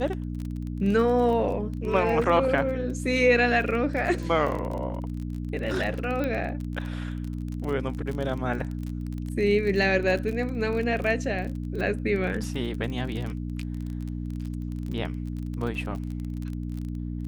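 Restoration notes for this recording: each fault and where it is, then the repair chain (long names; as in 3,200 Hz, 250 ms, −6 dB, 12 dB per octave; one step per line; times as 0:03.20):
surface crackle 26 per second −31 dBFS
mains hum 60 Hz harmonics 5 −32 dBFS
0:06.24: click −17 dBFS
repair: click removal
hum removal 60 Hz, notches 5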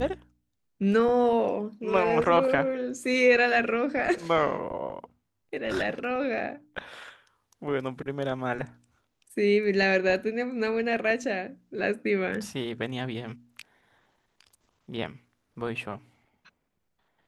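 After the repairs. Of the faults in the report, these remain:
none of them is left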